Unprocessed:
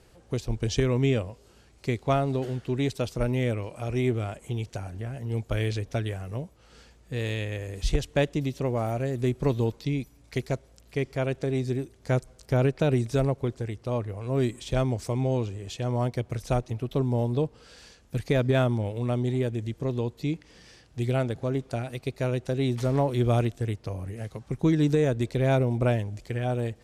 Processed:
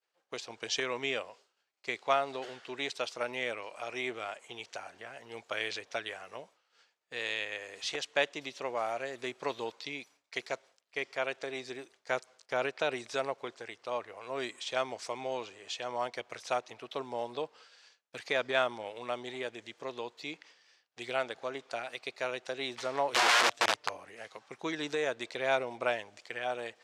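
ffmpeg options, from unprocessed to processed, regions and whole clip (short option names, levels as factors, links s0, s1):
-filter_complex "[0:a]asettb=1/sr,asplit=3[s0][s1][s2];[s0]atrim=end=23.124[s3];[s1]atrim=start=23.12:end=23.97,asetpts=PTS-STARTPTS,afade=t=in:d=0.004:c=qsin,afade=t=out:st=0.846:d=0.004:c=qsin,lowshelf=f=86:g=11.5,aecho=1:1:6.8:0.7,atrim=end_sample=37485,aeval=exprs='(mod(8.41*val(0)+1,2)-1)/8.41':c=same[s4];[s2]atrim=start=23.966[s5];[s3][s4]acrossfade=d=0.004:c1=hsin:c2=qsin[s6];[s6][s5]acrossfade=d=0.004:c1=qsin:c2=hsin,lowpass=5800,agate=range=0.0224:threshold=0.00708:ratio=3:detection=peak,highpass=850,volume=1.33"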